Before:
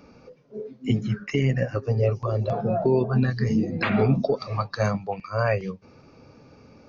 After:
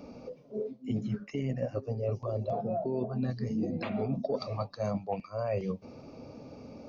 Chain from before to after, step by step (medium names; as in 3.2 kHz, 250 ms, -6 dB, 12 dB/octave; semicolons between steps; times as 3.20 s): fifteen-band graphic EQ 250 Hz +6 dB, 630 Hz +8 dB, 1.6 kHz -9 dB; reverse; compression 6:1, threshold -30 dBFS, peak gain reduction 16.5 dB; reverse